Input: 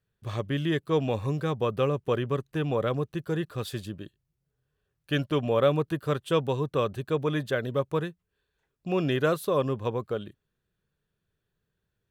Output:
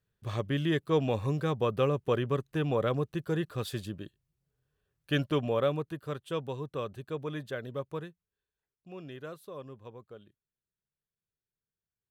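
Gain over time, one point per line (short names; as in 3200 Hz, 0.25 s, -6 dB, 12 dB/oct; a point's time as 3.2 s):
5.29 s -1.5 dB
5.95 s -9 dB
7.91 s -9 dB
8.9 s -18 dB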